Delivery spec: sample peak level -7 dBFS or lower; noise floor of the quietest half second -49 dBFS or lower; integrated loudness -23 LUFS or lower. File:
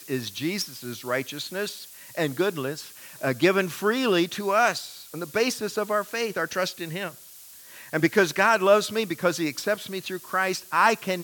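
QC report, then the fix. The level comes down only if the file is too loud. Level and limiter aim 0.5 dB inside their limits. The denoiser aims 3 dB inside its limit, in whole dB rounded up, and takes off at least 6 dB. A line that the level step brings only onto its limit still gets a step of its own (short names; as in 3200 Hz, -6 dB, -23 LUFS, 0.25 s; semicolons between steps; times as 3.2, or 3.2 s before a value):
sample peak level -6.0 dBFS: fail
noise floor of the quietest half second -47 dBFS: fail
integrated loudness -25.0 LUFS: OK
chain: denoiser 6 dB, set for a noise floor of -47 dBFS; limiter -7.5 dBFS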